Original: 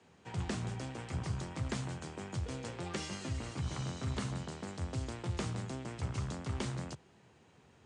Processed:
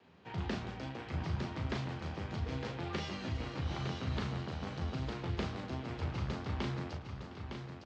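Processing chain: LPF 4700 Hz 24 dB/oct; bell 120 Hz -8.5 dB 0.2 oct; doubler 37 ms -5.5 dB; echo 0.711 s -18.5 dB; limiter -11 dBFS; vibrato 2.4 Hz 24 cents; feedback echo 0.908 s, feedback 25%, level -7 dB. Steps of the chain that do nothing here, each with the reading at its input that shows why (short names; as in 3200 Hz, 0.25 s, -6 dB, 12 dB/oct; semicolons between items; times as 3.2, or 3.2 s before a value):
limiter -11 dBFS: input peak -23.5 dBFS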